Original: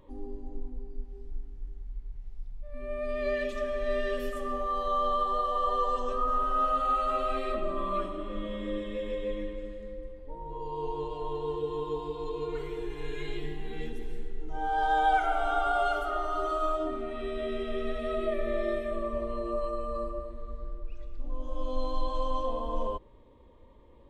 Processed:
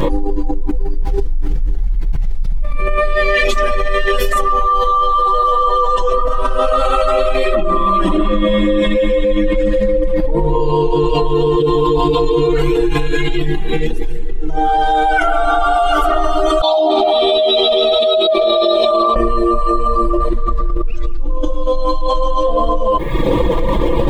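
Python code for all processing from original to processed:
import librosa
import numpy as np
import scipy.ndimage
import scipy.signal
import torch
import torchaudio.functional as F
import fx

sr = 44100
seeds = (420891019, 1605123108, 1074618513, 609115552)

y = fx.chain(x, sr, fx.double_bandpass(hz=1800.0, octaves=2.2),
    fx.env_flatten(amount_pct=100), at=(16.61, 19.16))
y = fx.dereverb_blind(y, sr, rt60_s=0.57)
y = y + 0.98 * np.pad(y, (int(6.0 * sr / 1000.0), 0))[:len(y)]
y = fx.env_flatten(y, sr, amount_pct=100)
y = y * 10.0 ** (5.5 / 20.0)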